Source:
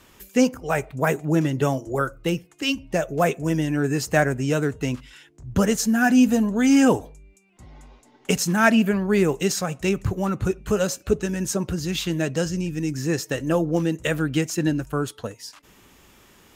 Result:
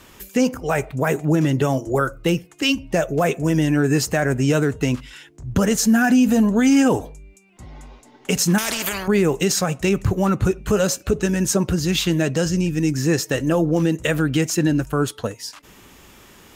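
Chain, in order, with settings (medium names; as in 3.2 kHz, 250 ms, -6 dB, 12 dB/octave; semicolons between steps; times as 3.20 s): peak limiter -15 dBFS, peak gain reduction 12 dB; 8.58–9.08 s: spectrum-flattening compressor 4:1; trim +6 dB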